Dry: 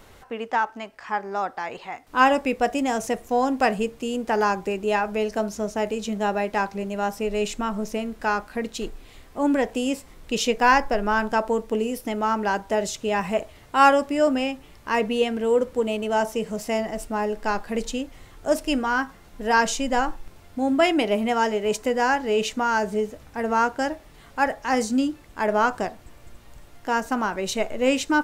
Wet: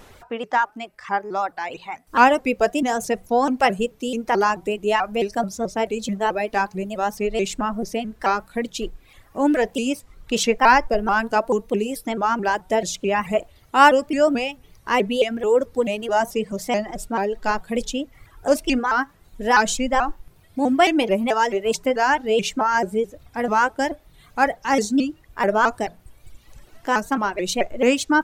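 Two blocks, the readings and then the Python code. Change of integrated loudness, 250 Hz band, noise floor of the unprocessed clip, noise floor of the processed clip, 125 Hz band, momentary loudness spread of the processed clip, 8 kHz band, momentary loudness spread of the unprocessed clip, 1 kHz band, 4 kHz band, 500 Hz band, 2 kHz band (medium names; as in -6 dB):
+2.5 dB, +1.5 dB, -49 dBFS, -53 dBFS, +2.0 dB, 11 LU, +3.0 dB, 10 LU, +3.0 dB, +2.5 dB, +2.5 dB, +3.0 dB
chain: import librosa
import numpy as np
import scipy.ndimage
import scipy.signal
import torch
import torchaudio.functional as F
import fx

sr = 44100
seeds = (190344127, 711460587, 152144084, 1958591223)

y = fx.dereverb_blind(x, sr, rt60_s=1.2)
y = fx.hum_notches(y, sr, base_hz=60, count=3)
y = fx.vibrato_shape(y, sr, shape='saw_up', rate_hz=4.6, depth_cents=160.0)
y = F.gain(torch.from_numpy(y), 3.5).numpy()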